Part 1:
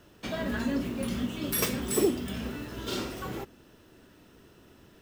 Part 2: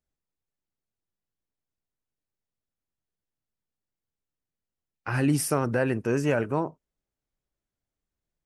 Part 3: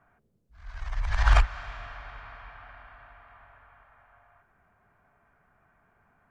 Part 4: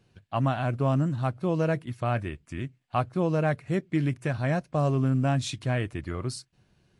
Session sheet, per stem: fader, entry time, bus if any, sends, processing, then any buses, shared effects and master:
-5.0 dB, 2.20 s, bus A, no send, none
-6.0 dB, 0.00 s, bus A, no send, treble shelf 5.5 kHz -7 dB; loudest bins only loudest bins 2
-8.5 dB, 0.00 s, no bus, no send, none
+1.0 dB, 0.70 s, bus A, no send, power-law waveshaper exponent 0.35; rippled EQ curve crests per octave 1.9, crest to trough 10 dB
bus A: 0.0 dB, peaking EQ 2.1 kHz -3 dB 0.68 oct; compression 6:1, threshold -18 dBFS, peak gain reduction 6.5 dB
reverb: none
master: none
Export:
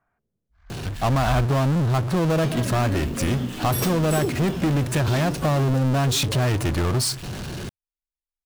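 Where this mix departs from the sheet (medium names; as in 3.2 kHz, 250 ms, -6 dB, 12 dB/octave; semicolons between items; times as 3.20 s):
stem 1 -5.0 dB -> +2.0 dB; stem 4: missing rippled EQ curve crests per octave 1.9, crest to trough 10 dB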